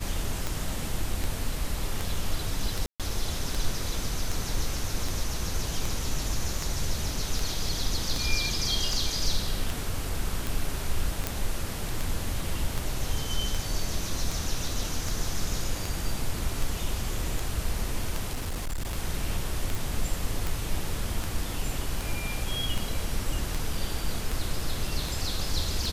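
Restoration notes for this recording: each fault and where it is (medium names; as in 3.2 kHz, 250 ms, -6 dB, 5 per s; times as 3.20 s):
tick 78 rpm
2.86–3.00 s: dropout 137 ms
11.27 s: pop
18.33–18.97 s: clipped -27 dBFS
19.75 s: pop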